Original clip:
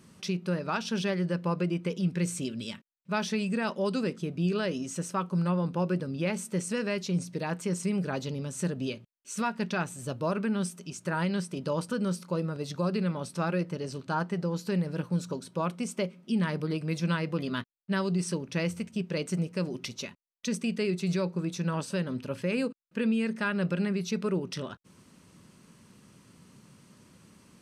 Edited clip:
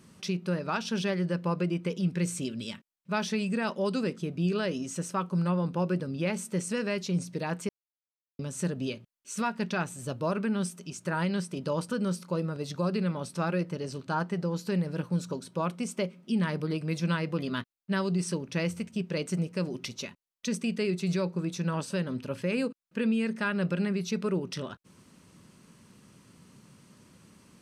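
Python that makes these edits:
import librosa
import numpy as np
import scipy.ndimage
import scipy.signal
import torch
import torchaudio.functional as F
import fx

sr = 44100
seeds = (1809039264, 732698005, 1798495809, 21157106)

y = fx.edit(x, sr, fx.silence(start_s=7.69, length_s=0.7), tone=tone)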